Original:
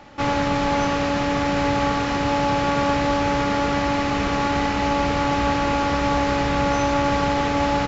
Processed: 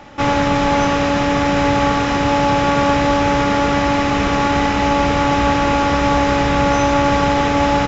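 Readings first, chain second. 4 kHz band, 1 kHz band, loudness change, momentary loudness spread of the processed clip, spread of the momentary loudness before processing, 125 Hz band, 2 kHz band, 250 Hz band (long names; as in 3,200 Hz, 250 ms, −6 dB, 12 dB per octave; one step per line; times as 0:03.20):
+5.0 dB, +5.5 dB, +5.5 dB, 1 LU, 1 LU, +5.5 dB, +5.5 dB, +5.5 dB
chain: notch filter 4,400 Hz, Q 12
level +5.5 dB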